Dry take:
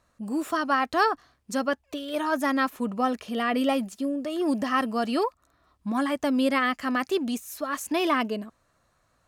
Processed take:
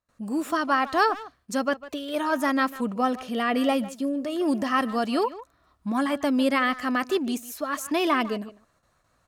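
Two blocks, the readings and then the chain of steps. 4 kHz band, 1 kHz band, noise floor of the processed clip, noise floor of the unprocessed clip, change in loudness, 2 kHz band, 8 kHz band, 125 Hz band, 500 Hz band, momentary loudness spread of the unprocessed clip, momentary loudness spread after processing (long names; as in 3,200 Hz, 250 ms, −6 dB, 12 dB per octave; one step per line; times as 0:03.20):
+1.0 dB, +1.0 dB, −68 dBFS, −70 dBFS, +1.0 dB, +1.0 dB, +1.0 dB, can't be measured, +1.0 dB, 8 LU, 8 LU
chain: far-end echo of a speakerphone 150 ms, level −15 dB
noise gate with hold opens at −58 dBFS
level +1 dB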